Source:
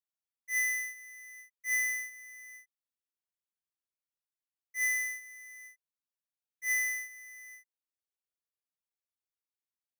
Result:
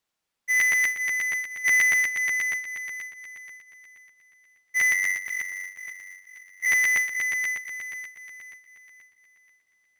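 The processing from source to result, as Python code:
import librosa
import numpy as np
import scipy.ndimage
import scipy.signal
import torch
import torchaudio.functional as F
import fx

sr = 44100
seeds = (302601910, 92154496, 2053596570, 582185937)

p1 = fx.high_shelf(x, sr, hz=7700.0, db=-11.5)
p2 = fx.hum_notches(p1, sr, base_hz=50, count=3)
p3 = fx.over_compress(p2, sr, threshold_db=-38.0, ratio=-1.0)
p4 = p2 + (p3 * librosa.db_to_amplitude(2.5))
p5 = fx.ring_mod(p4, sr, carrier_hz=47.0, at=(4.92, 6.66))
p6 = p5 + fx.echo_thinned(p5, sr, ms=504, feedback_pct=40, hz=410.0, wet_db=-10, dry=0)
p7 = fx.buffer_crackle(p6, sr, first_s=0.59, period_s=0.12, block=512, kind='repeat')
y = p7 * librosa.db_to_amplitude(7.0)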